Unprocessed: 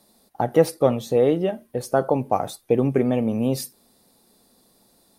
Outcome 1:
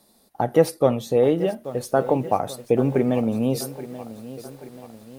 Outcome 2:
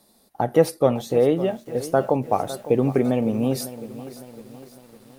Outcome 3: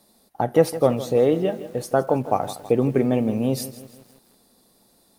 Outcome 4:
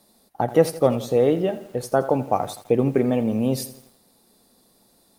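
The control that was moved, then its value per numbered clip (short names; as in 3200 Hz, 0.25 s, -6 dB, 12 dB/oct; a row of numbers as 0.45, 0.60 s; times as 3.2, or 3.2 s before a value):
lo-fi delay, time: 833, 556, 162, 84 ms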